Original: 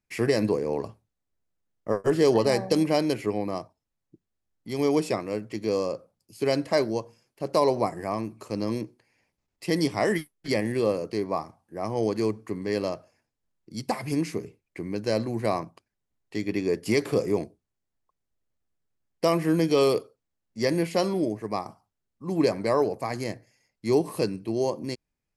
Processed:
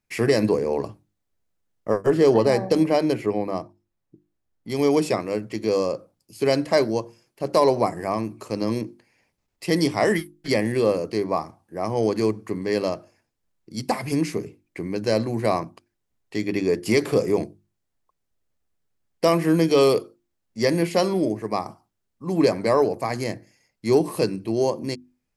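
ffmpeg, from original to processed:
-filter_complex "[0:a]asettb=1/sr,asplit=3[a][b][c];[a]atrim=end=2.064[d];[b]atrim=start=2.06:end=4.7,asetpts=PTS-STARTPTS,afade=t=in:d=0.004:c=qsin,afade=t=out:st=2.636:d=0.004:c=qsin,highshelf=f=2.6k:g=-7[e];[c]atrim=start=4.696[f];[d][e]acrossfade=d=0.004:c1=hsin:c2=qsin[g];[g][f]acrossfade=d=0.004:c1=qsin:c2=hsin,bandreject=f=50:t=h:w=6,bandreject=f=100:t=h:w=6,bandreject=f=150:t=h:w=6,bandreject=f=200:t=h:w=6,bandreject=f=250:t=h:w=6,bandreject=f=300:t=h:w=6,bandreject=f=350:t=h:w=6,acontrast=37,volume=-1dB"

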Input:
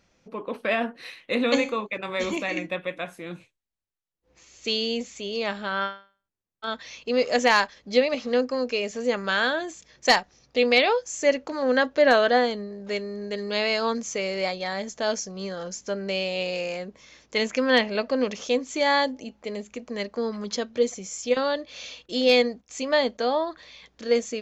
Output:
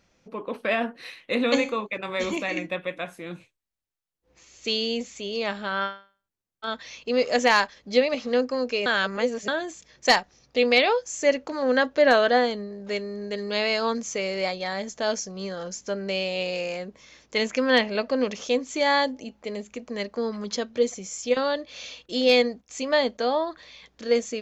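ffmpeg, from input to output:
-filter_complex "[0:a]asplit=3[a][b][c];[a]atrim=end=8.862[d];[b]atrim=start=8.858:end=9.482,asetpts=PTS-STARTPTS,areverse[e];[c]atrim=start=9.478[f];[d][e]acrossfade=d=0.004:c1=hsin:c2=hsin[g];[g][f]acrossfade=d=0.004:c1=hsin:c2=hsin"

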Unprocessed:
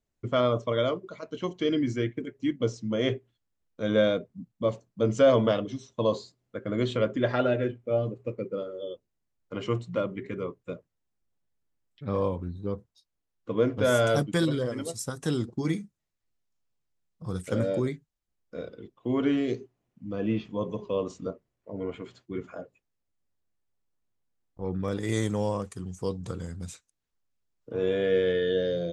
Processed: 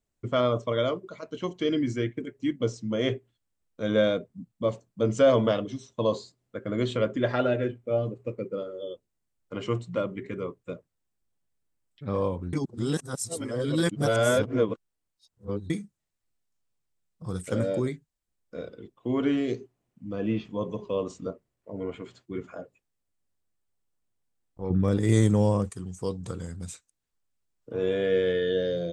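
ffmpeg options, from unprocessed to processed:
-filter_complex "[0:a]asettb=1/sr,asplit=3[a][b][c];[a]atrim=end=24.704[d];[b]atrim=start=24.7:end=25.7,asetpts=PTS-STARTPTS,afade=t=in:d=0.004:c=qsin,afade=t=out:st=0.996:d=0.004:c=qsin,lowshelf=f=370:g=10[e];[c]atrim=start=25.696[f];[d][e]acrossfade=d=0.004:c1=hsin:c2=qsin[g];[g][f]acrossfade=d=0.004:c1=qsin:c2=hsin,asplit=3[h][i][j];[h]atrim=end=12.532[k];[i]atrim=start=12.528:end=15.702,asetpts=PTS-STARTPTS,areverse[l];[j]atrim=start=15.698[m];[k][l]acrossfade=d=0.004:c1=hsin:c2=hsin[n];[n][m]acrossfade=d=0.004:c1=hsin:c2=hsin,equalizer=f=8.3k:t=o:w=0.32:g=6"

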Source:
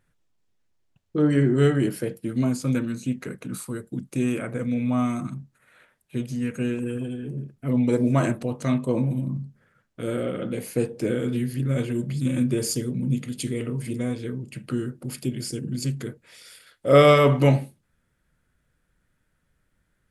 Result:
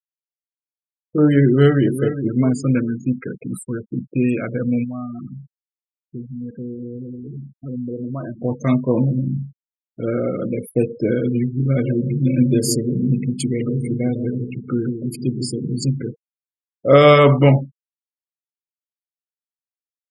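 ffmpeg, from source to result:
-filter_complex "[0:a]asplit=2[a][b];[b]afade=t=in:st=1.43:d=0.01,afade=t=out:st=1.94:d=0.01,aecho=0:1:410|820|1230|1640:0.354813|0.124185|0.0434646|0.0152126[c];[a][c]amix=inputs=2:normalize=0,asplit=3[d][e][f];[d]afade=t=out:st=4.83:d=0.02[g];[e]acompressor=threshold=-40dB:ratio=2:attack=3.2:release=140:knee=1:detection=peak,afade=t=in:st=4.83:d=0.02,afade=t=out:st=8.38:d=0.02[h];[f]afade=t=in:st=8.38:d=0.02[i];[g][h][i]amix=inputs=3:normalize=0,asettb=1/sr,asplit=3[j][k][l];[j]atrim=end=11.624[m];[k]atrim=start=11.62:end=16.02,asetpts=PTS-STARTPTS,afade=t=in:d=0.004:c=qsin,afade=t=out:st=4.396:d=0.004:c=qsin,asplit=2[n][o];[o]adelay=157,lowpass=f=1k:p=1,volume=-7dB,asplit=2[p][q];[q]adelay=157,lowpass=f=1k:p=1,volume=0.46,asplit=2[r][s];[s]adelay=157,lowpass=f=1k:p=1,volume=0.46,asplit=2[t][u];[u]adelay=157,lowpass=f=1k:p=1,volume=0.46,asplit=2[v][w];[w]adelay=157,lowpass=f=1k:p=1,volume=0.46[x];[n][p][r][t][v][x]amix=inputs=6:normalize=0,atrim=end_sample=194040[y];[l]atrim=start=16.016[z];[m][y]acrossfade=d=0.004:c1=hsin:c2=qsin[aa];[aa][z]acrossfade=d=0.004:c1=qsin:c2=hsin,afftfilt=real='re*gte(hypot(re,im),0.0282)':imag='im*gte(hypot(re,im),0.0282)':win_size=1024:overlap=0.75,alimiter=level_in=7dB:limit=-1dB:release=50:level=0:latency=1,volume=-1dB"

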